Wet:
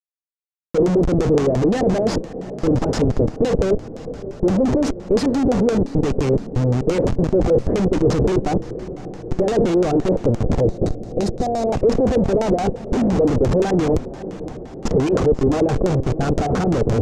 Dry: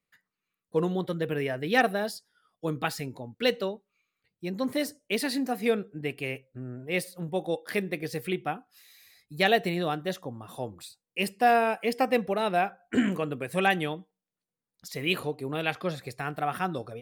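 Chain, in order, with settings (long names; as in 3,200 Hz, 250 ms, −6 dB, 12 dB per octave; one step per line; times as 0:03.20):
dynamic equaliser 160 Hz, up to −7 dB, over −50 dBFS, Q 3.6
leveller curve on the samples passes 5
comparator with hysteresis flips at −21 dBFS
on a send: feedback delay with all-pass diffusion 588 ms, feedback 65%, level −15 dB
on the sum: gain on a spectral selection 0:10.63–0:11.69, 800–3,600 Hz −8 dB
tilt shelving filter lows +8.5 dB, about 1,300 Hz
auto-filter low-pass square 5.8 Hz 490–6,600 Hz
level −6.5 dB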